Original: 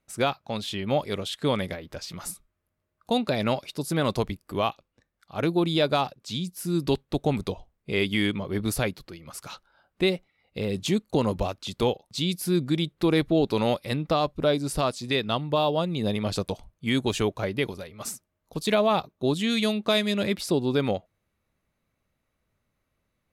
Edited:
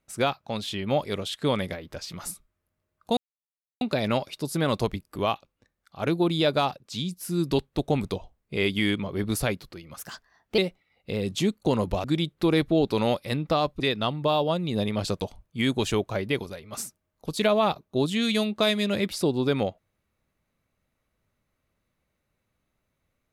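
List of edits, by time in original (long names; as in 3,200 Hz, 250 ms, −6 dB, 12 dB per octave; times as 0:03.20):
0:03.17: splice in silence 0.64 s
0:09.35–0:10.06: play speed 120%
0:11.52–0:12.64: remove
0:14.40–0:15.08: remove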